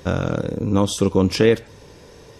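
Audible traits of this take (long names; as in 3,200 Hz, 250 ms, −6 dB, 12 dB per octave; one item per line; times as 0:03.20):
background noise floor −46 dBFS
spectral slope −6.0 dB per octave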